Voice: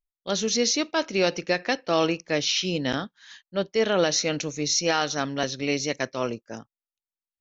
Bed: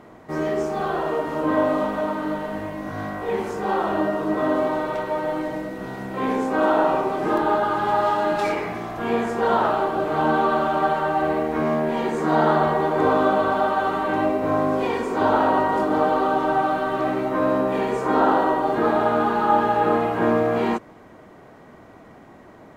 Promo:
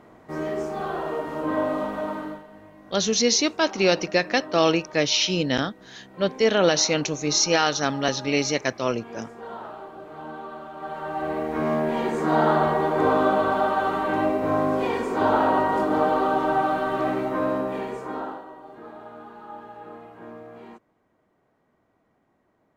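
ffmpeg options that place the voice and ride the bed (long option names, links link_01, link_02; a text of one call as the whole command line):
ffmpeg -i stem1.wav -i stem2.wav -filter_complex "[0:a]adelay=2650,volume=3dB[link_01];[1:a]volume=11.5dB,afade=type=out:start_time=2.17:duration=0.27:silence=0.223872,afade=type=in:start_time=10.76:duration=1.01:silence=0.158489,afade=type=out:start_time=17.11:duration=1.32:silence=0.0944061[link_02];[link_01][link_02]amix=inputs=2:normalize=0" out.wav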